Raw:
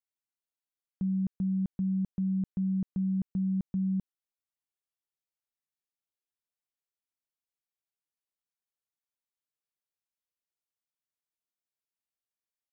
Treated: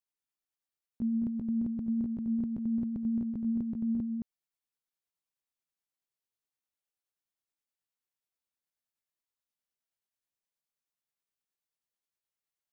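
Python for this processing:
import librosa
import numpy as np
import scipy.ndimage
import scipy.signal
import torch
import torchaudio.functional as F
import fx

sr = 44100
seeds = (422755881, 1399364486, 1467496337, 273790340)

p1 = fx.pitch_heads(x, sr, semitones=3.0)
y = p1 + fx.echo_single(p1, sr, ms=218, db=-4.5, dry=0)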